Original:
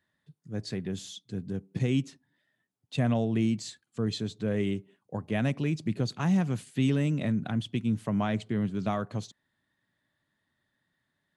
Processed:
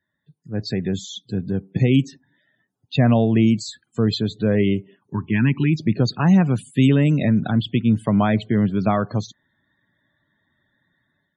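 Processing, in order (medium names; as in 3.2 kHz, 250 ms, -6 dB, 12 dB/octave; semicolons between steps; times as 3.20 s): loudest bins only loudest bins 64; level rider gain up to 10.5 dB; time-frequency box 5.07–5.80 s, 420–860 Hz -23 dB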